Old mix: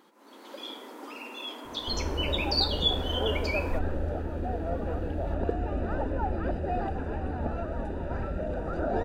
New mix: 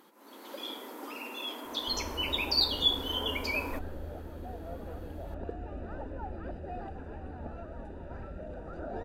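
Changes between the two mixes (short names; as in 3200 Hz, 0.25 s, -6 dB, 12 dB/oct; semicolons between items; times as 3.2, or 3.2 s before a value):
first sound: add bell 13000 Hz +11.5 dB 0.49 oct; second sound -10.0 dB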